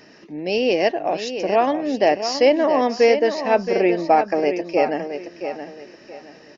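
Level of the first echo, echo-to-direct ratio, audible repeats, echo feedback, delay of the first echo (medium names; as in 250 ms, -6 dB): -9.0 dB, -8.5 dB, 3, 28%, 672 ms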